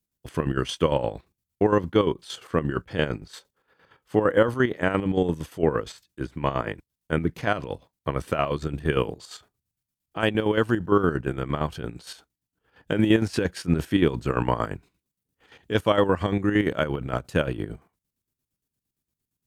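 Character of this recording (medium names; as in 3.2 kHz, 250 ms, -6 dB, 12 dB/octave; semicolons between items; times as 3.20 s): chopped level 8.7 Hz, depth 60%, duty 50%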